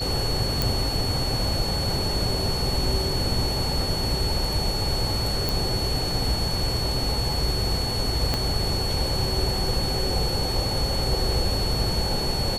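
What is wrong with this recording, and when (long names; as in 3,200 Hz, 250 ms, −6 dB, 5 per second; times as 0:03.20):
whistle 4,400 Hz −28 dBFS
0:00.62: click
0:05.49: click
0:08.34: click −9 dBFS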